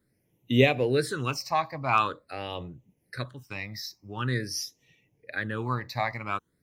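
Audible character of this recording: phasing stages 8, 0.46 Hz, lowest notch 410–1500 Hz

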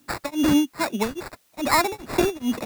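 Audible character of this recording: aliases and images of a low sample rate 3.1 kHz, jitter 0%; tremolo triangle 2.4 Hz, depth 100%; a quantiser's noise floor 12-bit, dither triangular

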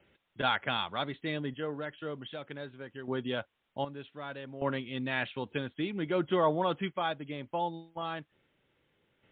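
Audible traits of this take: random-step tremolo 1.3 Hz, depth 75%; a quantiser's noise floor 12-bit, dither triangular; MP3

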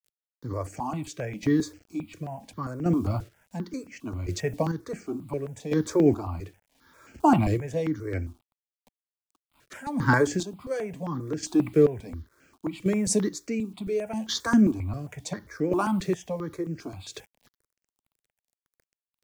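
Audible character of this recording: a quantiser's noise floor 10-bit, dither none; chopped level 0.7 Hz, depth 60%, duty 30%; notches that jump at a steady rate 7.5 Hz 240–3700 Hz

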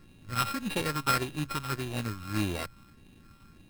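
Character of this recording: a buzz of ramps at a fixed pitch in blocks of 32 samples; phasing stages 6, 1.7 Hz, lowest notch 570–1400 Hz; aliases and images of a low sample rate 6.6 kHz, jitter 0%

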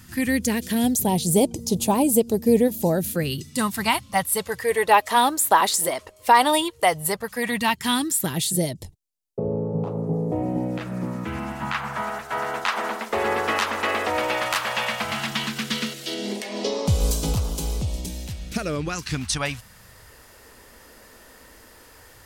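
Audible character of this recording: phasing stages 2, 0.13 Hz, lowest notch 140–1700 Hz

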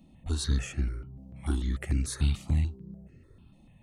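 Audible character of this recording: notches that jump at a steady rate 6.8 Hz 420–3500 Hz

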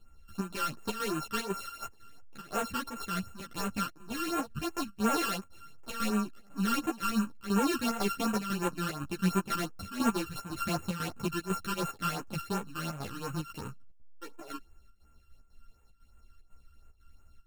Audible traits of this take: a buzz of ramps at a fixed pitch in blocks of 32 samples; phasing stages 12, 2.8 Hz, lowest notch 660–4800 Hz; chopped level 2 Hz, depth 65%, duty 80%; a shimmering, thickened sound

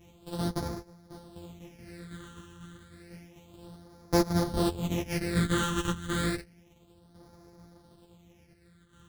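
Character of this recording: a buzz of ramps at a fixed pitch in blocks of 256 samples; phasing stages 8, 0.3 Hz, lowest notch 660–2800 Hz; tremolo saw down 0.56 Hz, depth 50%; a shimmering, thickened sound

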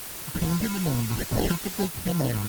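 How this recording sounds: aliases and images of a low sample rate 1.2 kHz, jitter 0%; phasing stages 12, 2.4 Hz, lowest notch 540–3100 Hz; a quantiser's noise floor 6-bit, dither triangular; Opus

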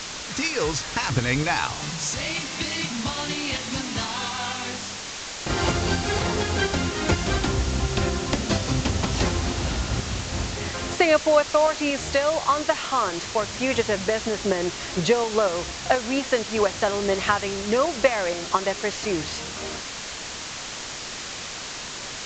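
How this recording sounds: tremolo saw up 4.2 Hz, depth 45%; a quantiser's noise floor 6-bit, dither triangular; µ-law

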